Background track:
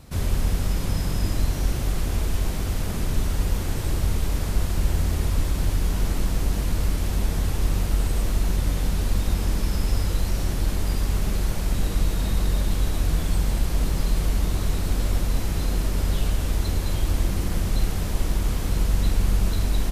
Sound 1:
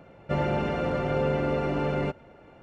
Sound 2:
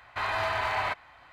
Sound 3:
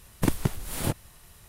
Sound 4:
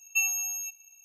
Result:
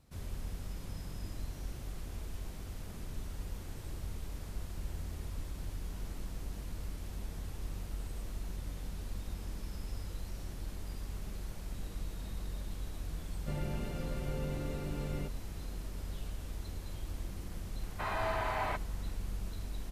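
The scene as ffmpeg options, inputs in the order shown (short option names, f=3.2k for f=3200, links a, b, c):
-filter_complex "[0:a]volume=-18dB[a];[1:a]equalizer=f=860:w=0.41:g=-12.5[b];[2:a]equalizer=f=240:w=0.34:g=13[c];[b]atrim=end=2.62,asetpts=PTS-STARTPTS,volume=-7dB,afade=t=in:d=0.004:c=hsin,afade=t=out:st=2.616:d=0.004:c=hsin,adelay=13170[d];[c]atrim=end=1.32,asetpts=PTS-STARTPTS,volume=-11dB,afade=t=in:d=0.004:c=hsin,afade=t=out:st=1.316:d=0.004:c=hsin,adelay=17830[e];[a][d][e]amix=inputs=3:normalize=0"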